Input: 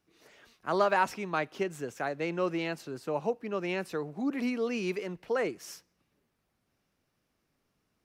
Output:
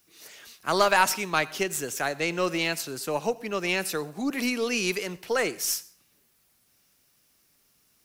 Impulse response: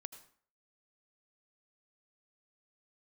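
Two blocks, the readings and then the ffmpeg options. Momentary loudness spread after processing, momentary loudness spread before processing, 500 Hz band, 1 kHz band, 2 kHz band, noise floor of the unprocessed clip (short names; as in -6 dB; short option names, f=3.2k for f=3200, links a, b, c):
9 LU, 9 LU, +3.0 dB, +5.0 dB, +8.5 dB, -79 dBFS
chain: -filter_complex "[0:a]crystalizer=i=6.5:c=0,aeval=exprs='0.335*(cos(1*acos(clip(val(0)/0.335,-1,1)))-cos(1*PI/2))+0.0133*(cos(4*acos(clip(val(0)/0.335,-1,1)))-cos(4*PI/2))':c=same,asplit=2[a][b];[1:a]atrim=start_sample=2205[c];[b][c]afir=irnorm=-1:irlink=0,volume=-1.5dB[d];[a][d]amix=inputs=2:normalize=0,volume=-1.5dB"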